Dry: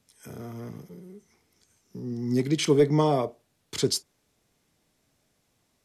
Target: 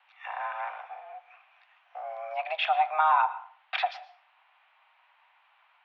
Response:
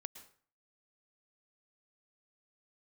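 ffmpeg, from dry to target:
-filter_complex "[0:a]acompressor=threshold=0.0316:ratio=4,asplit=2[s0][s1];[1:a]atrim=start_sample=2205,lowshelf=f=150:g=-7.5[s2];[s1][s2]afir=irnorm=-1:irlink=0,volume=1.68[s3];[s0][s3]amix=inputs=2:normalize=0,highpass=f=480:t=q:w=0.5412,highpass=f=480:t=q:w=1.307,lowpass=f=2700:t=q:w=0.5176,lowpass=f=2700:t=q:w=0.7071,lowpass=f=2700:t=q:w=1.932,afreqshift=320,volume=2.37"

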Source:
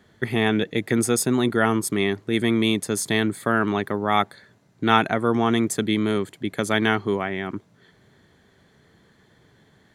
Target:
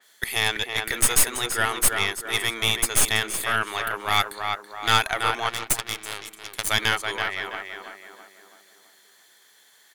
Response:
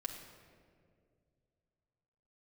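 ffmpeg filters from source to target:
-filter_complex "[0:a]highpass=630,highshelf=f=9700:g=6,asplit=2[s0][s1];[s1]adelay=329,lowpass=f=2100:p=1,volume=0.631,asplit=2[s2][s3];[s3]adelay=329,lowpass=f=2100:p=1,volume=0.5,asplit=2[s4][s5];[s5]adelay=329,lowpass=f=2100:p=1,volume=0.5,asplit=2[s6][s7];[s7]adelay=329,lowpass=f=2100:p=1,volume=0.5,asplit=2[s8][s9];[s9]adelay=329,lowpass=f=2100:p=1,volume=0.5,asplit=2[s10][s11];[s11]adelay=329,lowpass=f=2100:p=1,volume=0.5[s12];[s2][s4][s6][s8][s10][s12]amix=inputs=6:normalize=0[s13];[s0][s13]amix=inputs=2:normalize=0,asettb=1/sr,asplit=3[s14][s15][s16];[s14]atrim=end=5.494[s17];[s15]atrim=start=5.49:end=6.69,asetpts=PTS-STARTPTS,afade=t=in:d=0.004:c=qsin,afade=t=out:st=1.196:d=0.004:c=qsin,aeval=exprs='0.316*(cos(1*acos(clip(val(0)/0.316,-1,1)))-cos(1*PI/2))+0.0794*(cos(3*acos(clip(val(0)/0.316,-1,1)))-cos(3*PI/2))+0.0158*(cos(8*acos(clip(val(0)/0.316,-1,1)))-cos(8*PI/2))':c=same[s18];[s16]atrim=start=6.686[s19];[s17][s18]acrossfade=d=0.004:c1=hsin:c2=qsin[s20];[s20][s19]acrossfade=d=0.004:c1=qsin:c2=hsin,crystalizer=i=8.5:c=0,aeval=exprs='(tanh(2.24*val(0)+0.7)-tanh(0.7))/2.24':c=same,adynamicequalizer=threshold=0.0251:dfrequency=3800:dqfactor=0.7:tfrequency=3800:tqfactor=0.7:attack=5:release=100:ratio=0.375:range=3.5:mode=cutabove:tftype=highshelf,volume=0.75"

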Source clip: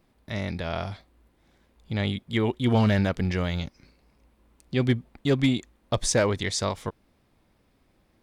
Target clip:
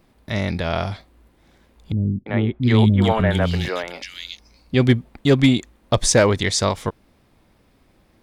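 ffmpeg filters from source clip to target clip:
-filter_complex "[0:a]asettb=1/sr,asplit=3[s0][s1][s2];[s0]atrim=end=1.924[s3];[s1]atrim=start=1.92:end=4.74,asetpts=PTS-STARTPTS,afade=t=in:d=0.004:c=qsin,afade=t=out:st=2.816:d=0.004:c=qsin,acrossover=split=330|2400[s4][s5][s6];[s5]adelay=340[s7];[s6]adelay=710[s8];[s4][s7][s8]amix=inputs=3:normalize=0,atrim=end_sample=124362[s9];[s2]atrim=start=4.736[s10];[s3][s9]acrossfade=d=0.004:c1=hsin:c2=qsin[s11];[s11][s10]acrossfade=d=0.004:c1=qsin:c2=hsin,volume=2.37"

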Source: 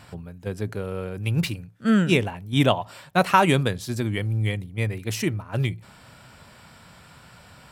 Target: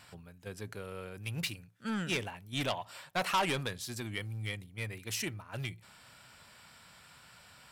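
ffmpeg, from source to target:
-filter_complex "[0:a]asettb=1/sr,asplit=3[s0][s1][s2];[s0]atrim=end=2.944[s3];[s1]atrim=start=2.94:end=3.66,asetpts=PTS-STARTPTS,afade=t=in:d=0.004:c=qsin,afade=t=out:st=0.716:d=0.004:c=qsin,equalizer=f=730:t=o:w=2.5:g=4[s4];[s2]atrim=start=3.656[s5];[s3][s4]acrossfade=d=0.004:c1=hsin:c2=qsin[s6];[s6][s5]acrossfade=d=0.004:c1=qsin:c2=hsin,asoftclip=type=tanh:threshold=0.158,tiltshelf=f=940:g=-5.5,volume=0.355"

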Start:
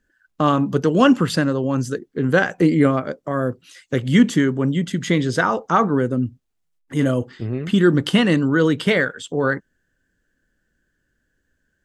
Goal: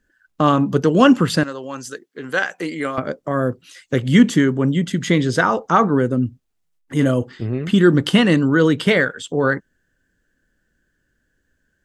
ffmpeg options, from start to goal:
-filter_complex "[0:a]asettb=1/sr,asplit=3[s0][s1][s2];[s0]atrim=end=1.434[s3];[s1]atrim=start=1.43:end=2.98,asetpts=PTS-STARTPTS,afade=t=in:d=0.004:c=qsin,afade=t=out:st=1.546:d=0.004:c=qsin,highpass=f=1300:p=1[s4];[s2]atrim=start=2.976[s5];[s3][s4]acrossfade=d=0.004:c1=hsin:c2=qsin[s6];[s6][s5]acrossfade=d=0.004:c1=qsin:c2=hsin,volume=1.26"

